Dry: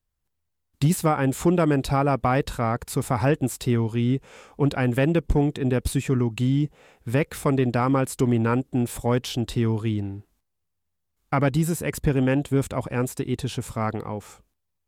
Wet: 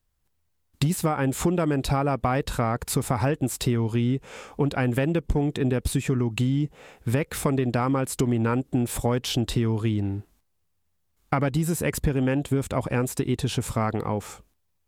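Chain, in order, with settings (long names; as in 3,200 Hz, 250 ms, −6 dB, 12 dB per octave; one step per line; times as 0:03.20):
downward compressor, threshold −26 dBFS, peak gain reduction 10.5 dB
level +5.5 dB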